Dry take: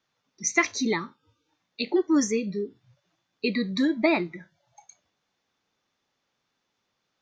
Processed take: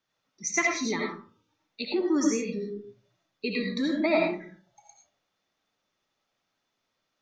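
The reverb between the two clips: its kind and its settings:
comb and all-pass reverb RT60 0.4 s, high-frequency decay 0.5×, pre-delay 45 ms, DRR −1 dB
level −5 dB

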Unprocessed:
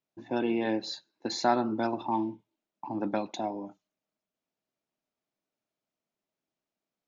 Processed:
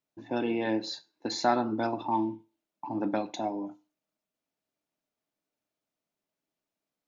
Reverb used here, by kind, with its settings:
feedback delay network reverb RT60 0.33 s, low-frequency decay 0.9×, high-frequency decay 0.85×, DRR 11.5 dB

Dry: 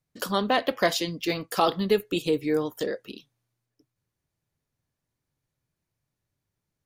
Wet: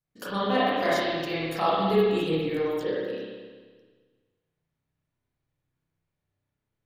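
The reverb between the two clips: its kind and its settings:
spring reverb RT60 1.5 s, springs 31/50 ms, chirp 30 ms, DRR −9.5 dB
level −9.5 dB

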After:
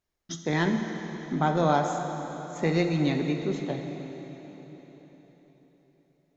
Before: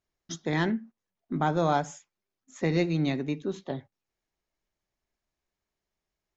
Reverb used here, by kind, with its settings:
dense smooth reverb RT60 4.4 s, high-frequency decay 0.9×, DRR 4 dB
level +1 dB

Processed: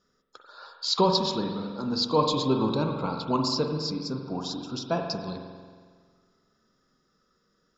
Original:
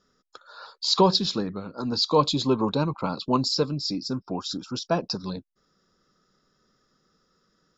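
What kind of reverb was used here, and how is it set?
spring reverb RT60 1.7 s, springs 45 ms, chirp 80 ms, DRR 3 dB
level −3.5 dB

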